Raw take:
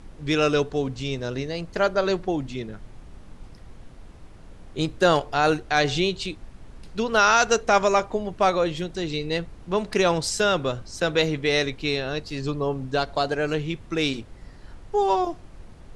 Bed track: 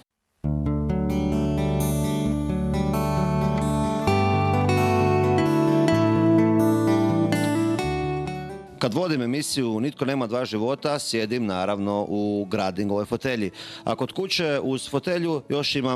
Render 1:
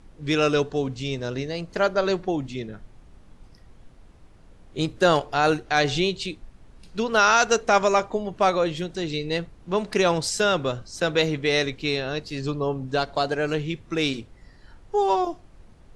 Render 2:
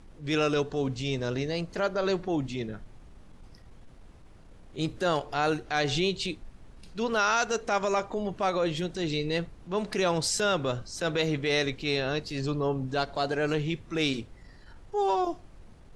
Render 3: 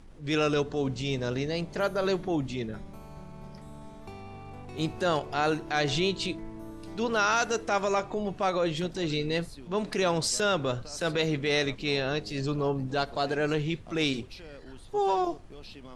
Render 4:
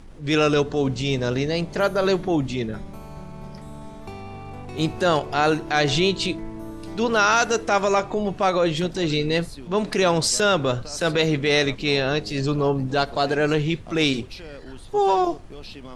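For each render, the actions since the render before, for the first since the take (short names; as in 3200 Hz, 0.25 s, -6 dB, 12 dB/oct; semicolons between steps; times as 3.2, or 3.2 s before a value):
noise print and reduce 6 dB
compressor 6:1, threshold -21 dBFS, peak gain reduction 8 dB; transient shaper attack -7 dB, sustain 0 dB
add bed track -23.5 dB
gain +7 dB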